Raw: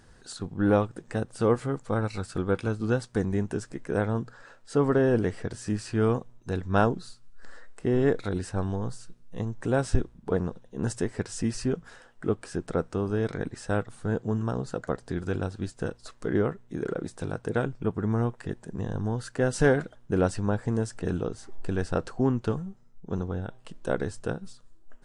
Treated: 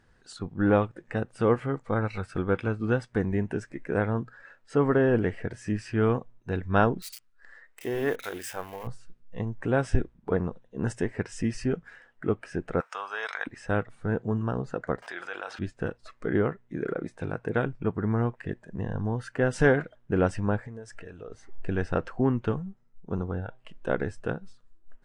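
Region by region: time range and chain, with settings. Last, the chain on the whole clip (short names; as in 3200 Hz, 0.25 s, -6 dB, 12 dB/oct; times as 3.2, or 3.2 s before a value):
7.02–8.87 switching spikes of -26.5 dBFS + low shelf 300 Hz -11.5 dB + notches 50/100/150/200/250 Hz
12.8–13.47 resonant high-pass 970 Hz, resonance Q 1.5 + high shelf 2200 Hz +11 dB
15.02–15.59 HPF 800 Hz + fast leveller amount 70%
20.58–21.32 bell 200 Hz -5 dB 1.1 oct + compressor 10:1, threshold -33 dBFS
whole clip: high shelf 4800 Hz -9 dB; spectral noise reduction 8 dB; bell 2100 Hz +5 dB 1.3 oct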